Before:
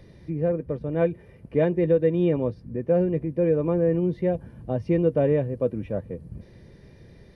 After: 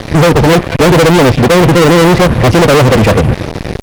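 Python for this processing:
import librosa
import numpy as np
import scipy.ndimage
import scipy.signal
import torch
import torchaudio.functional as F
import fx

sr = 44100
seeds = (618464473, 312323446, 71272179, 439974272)

y = fx.stretch_vocoder(x, sr, factor=0.52)
y = fx.echo_wet_highpass(y, sr, ms=196, feedback_pct=55, hz=1700.0, wet_db=-13.0)
y = fx.fuzz(y, sr, gain_db=46.0, gate_db=-49.0)
y = F.gain(torch.from_numpy(y), 8.5).numpy()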